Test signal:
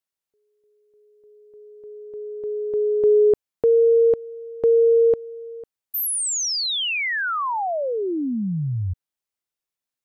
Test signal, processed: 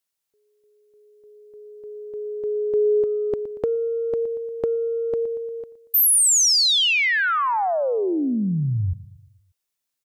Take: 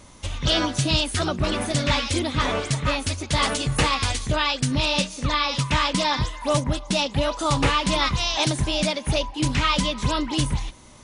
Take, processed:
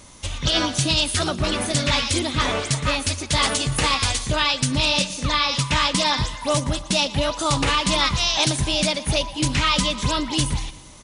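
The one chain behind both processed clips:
high-shelf EQ 2,800 Hz +6 dB
on a send: repeating echo 117 ms, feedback 54%, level −18 dB
on the sum: compressor whose output falls as the input rises −18 dBFS, ratio −0.5

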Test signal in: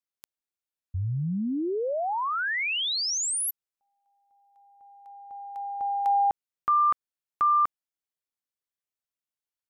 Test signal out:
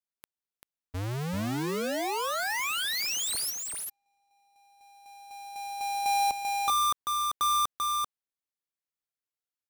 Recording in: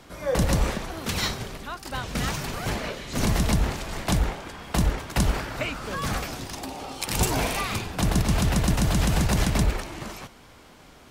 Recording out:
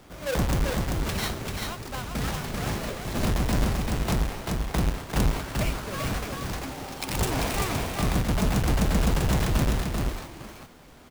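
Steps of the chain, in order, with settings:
each half-wave held at its own peak
on a send: single-tap delay 390 ms −3.5 dB
on the sum: level −7 dB

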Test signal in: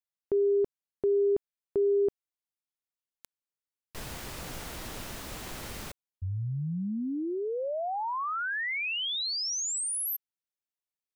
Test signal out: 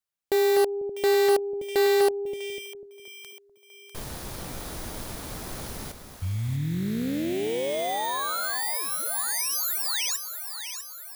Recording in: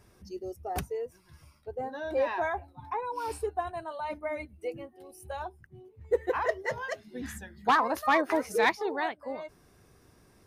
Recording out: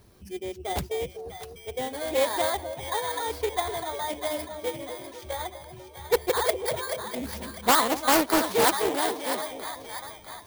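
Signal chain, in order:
samples in bit-reversed order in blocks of 16 samples
echo with a time of its own for lows and highs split 730 Hz, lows 248 ms, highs 648 ms, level −9 dB
highs frequency-modulated by the lows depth 0.51 ms
level +4 dB

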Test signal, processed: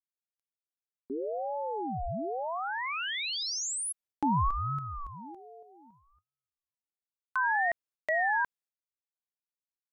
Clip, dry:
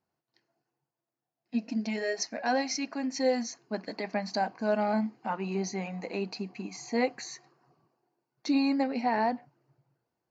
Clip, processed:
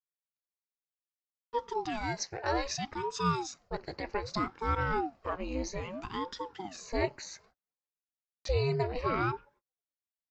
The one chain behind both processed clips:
noise gate −59 dBFS, range −35 dB
ring modulator whose carrier an LFO sweeps 420 Hz, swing 70%, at 0.63 Hz

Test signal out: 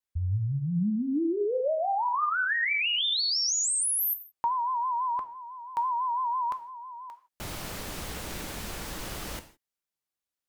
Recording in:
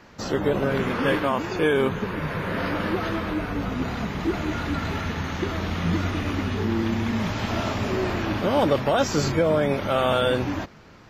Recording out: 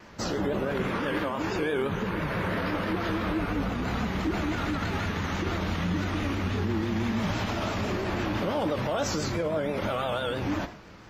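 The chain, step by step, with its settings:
brickwall limiter −21 dBFS
reverb whose tail is shaped and stops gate 190 ms falling, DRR 8.5 dB
pitch vibrato 6 Hz 89 cents

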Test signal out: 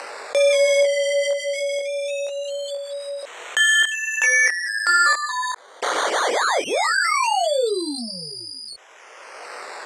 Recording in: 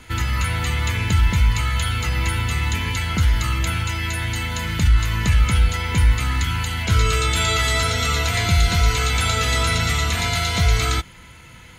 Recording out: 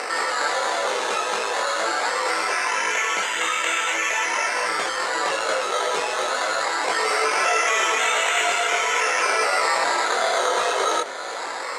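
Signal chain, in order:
stylus tracing distortion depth 0.029 ms
in parallel at −4 dB: soft clipping −22.5 dBFS
on the sum: sample-and-hold swept by an LFO 13×, swing 60% 0.21 Hz
multi-voice chorus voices 6, 0.39 Hz, delay 22 ms, depth 5 ms
upward compression, threshold −29 dBFS
elliptic band-pass filter 460–8,500 Hz, stop band 60 dB
envelope flattener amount 50%
level +2.5 dB

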